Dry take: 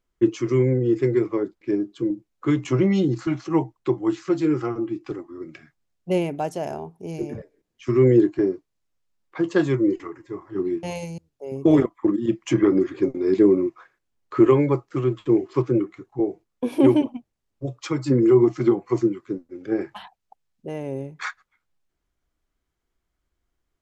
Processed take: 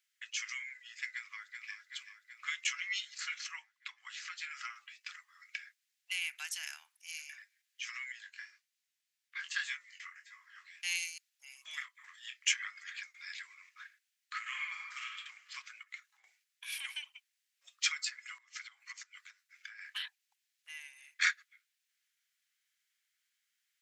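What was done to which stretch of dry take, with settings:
1.1–1.8 echo throw 0.38 s, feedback 65%, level -9 dB
3.51–4.51 high shelf 5500 Hz -9 dB
8.12–10.75 chorus 1.8 Hz, delay 17 ms, depth 5.9 ms
11.79–12.63 doubler 23 ms -6.5 dB
14.41–15.14 reverb throw, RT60 1 s, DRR -1.5 dB
15.83–16.24 compressor 3:1, threshold -37 dBFS
18.38–21.1 compressor 16:1, threshold -29 dBFS
whole clip: compressor 2:1, threshold -24 dBFS; steep high-pass 1700 Hz 36 dB/oct; gain +6 dB

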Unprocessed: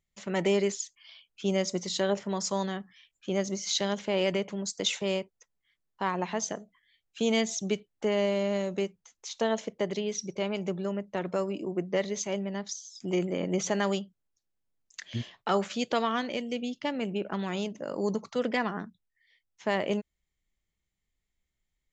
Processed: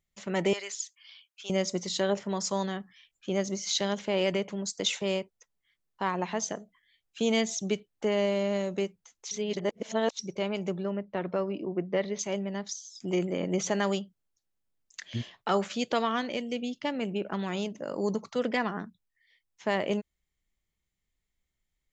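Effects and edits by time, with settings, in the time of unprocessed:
0.53–1.5 HPF 1100 Hz
9.31–10.19 reverse
10.83–12.19 running mean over 6 samples

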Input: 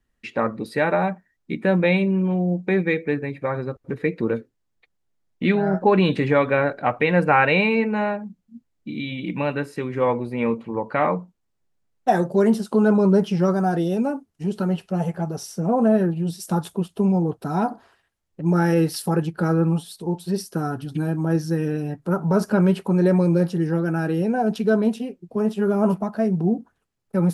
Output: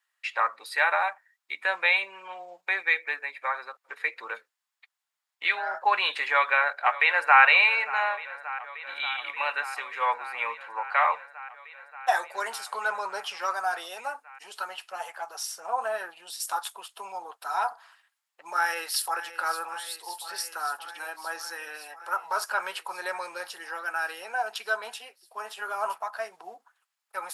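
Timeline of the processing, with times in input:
6.31–7.42 echo throw 0.58 s, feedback 85%, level -16.5 dB
18.57–19.2 echo throw 0.57 s, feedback 80%, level -13 dB
whole clip: HPF 920 Hz 24 dB/oct; notch 6000 Hz, Q 19; gain +3.5 dB

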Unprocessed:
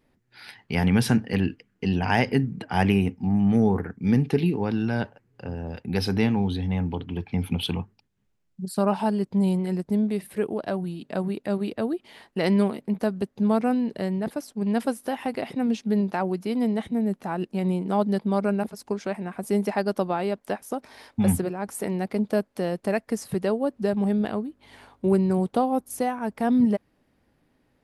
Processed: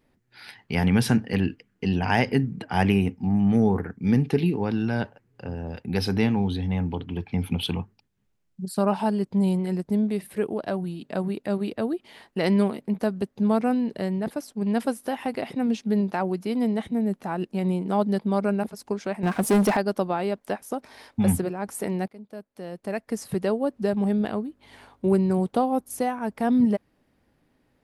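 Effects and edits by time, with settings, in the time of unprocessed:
19.23–19.77 sample leveller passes 3
22.08–23.26 fade in quadratic, from -19 dB

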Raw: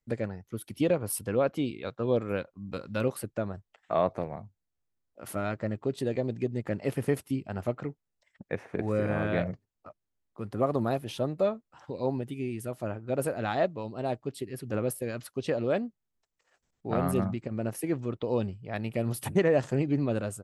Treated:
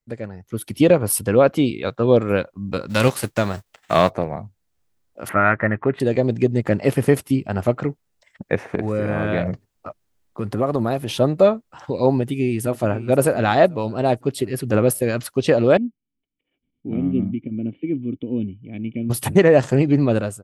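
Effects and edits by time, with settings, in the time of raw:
2.89–4.09 spectral whitening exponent 0.6
5.29–6 EQ curve 530 Hz 0 dB, 1900 Hz +14 dB, 5100 Hz -25 dB
8.75–11.19 compressor 2:1, threshold -35 dBFS
12.12–13.05 echo throw 0.52 s, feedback 40%, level -15.5 dB
15.77–19.1 vocal tract filter i
whole clip: AGC gain up to 14 dB

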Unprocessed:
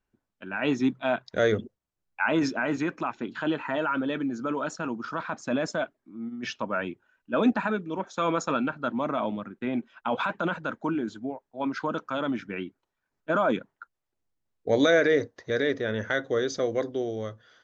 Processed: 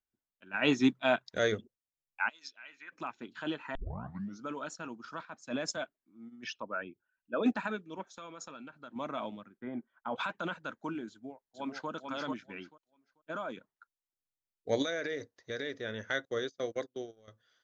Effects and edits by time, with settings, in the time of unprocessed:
0.54–1.38 gain +4 dB
2.28–2.91 band-pass 5900 Hz -> 1700 Hz, Q 2.2
3.75 tape start 0.67 s
5.25–5.77 three-band expander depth 70%
6.44–7.46 formant sharpening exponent 1.5
8.17–8.96 compressor 4:1, threshold -32 dBFS
9.57–10.16 polynomial smoothing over 41 samples
11.1–11.89 echo throw 0.44 s, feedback 30%, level -3 dB
12.5–13.57 fade out linear, to -6.5 dB
14.82–15.75 compressor, threshold -23 dBFS
16.25–17.28 gate -31 dBFS, range -25 dB
whole clip: high shelf 2400 Hz +10 dB; upward expander 1.5:1, over -42 dBFS; gain -5 dB

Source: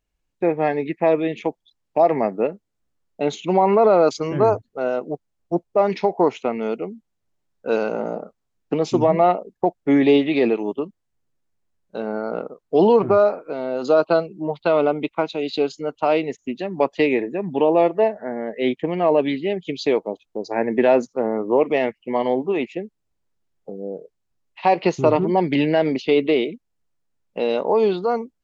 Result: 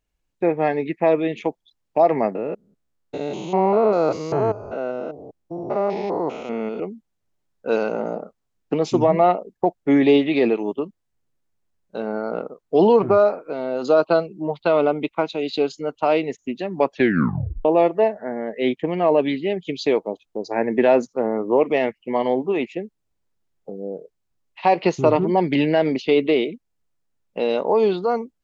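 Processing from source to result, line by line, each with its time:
2.35–6.8 stepped spectrum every 0.2 s
16.91 tape stop 0.74 s

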